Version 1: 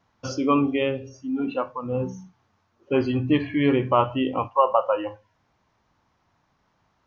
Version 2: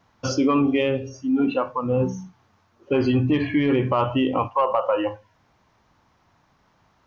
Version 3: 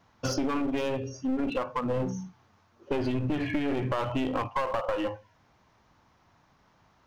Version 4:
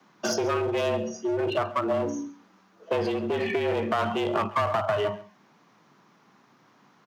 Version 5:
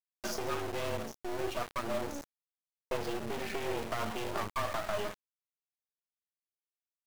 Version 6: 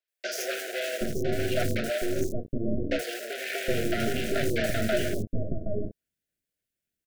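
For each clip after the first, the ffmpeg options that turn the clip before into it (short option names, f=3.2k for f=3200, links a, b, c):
-af "acontrast=49,alimiter=limit=-12dB:level=0:latency=1:release=63"
-af "aeval=exprs='clip(val(0),-1,0.0562)':c=same,acompressor=threshold=-23dB:ratio=6,volume=-1.5dB"
-filter_complex "[0:a]acrossover=split=280|910|2600[a][b][c][d];[a]alimiter=level_in=8dB:limit=-24dB:level=0:latency=1,volume=-8dB[e];[e][b][c][d]amix=inputs=4:normalize=0,afreqshift=99,aecho=1:1:137:0.106,volume=4dB"
-af "aeval=exprs='if(lt(val(0),0),0.447*val(0),val(0))':c=same,flanger=delay=3.9:depth=6.2:regen=58:speed=0.58:shape=sinusoidal,aeval=exprs='val(0)*gte(abs(val(0)),0.02)':c=same,volume=-2.5dB"
-filter_complex "[0:a]asplit=2[a][b];[b]acrusher=samples=38:mix=1:aa=0.000001:lfo=1:lforange=60.8:lforate=3.6,volume=-6dB[c];[a][c]amix=inputs=2:normalize=0,asuperstop=centerf=1000:order=12:qfactor=1.4,acrossover=split=490|5000[d][e][f];[f]adelay=80[g];[d]adelay=770[h];[h][e][g]amix=inputs=3:normalize=0,volume=8.5dB"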